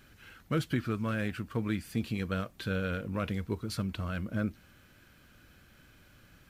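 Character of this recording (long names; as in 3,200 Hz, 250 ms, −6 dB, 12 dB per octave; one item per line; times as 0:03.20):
background noise floor −60 dBFS
spectral slope −6.0 dB per octave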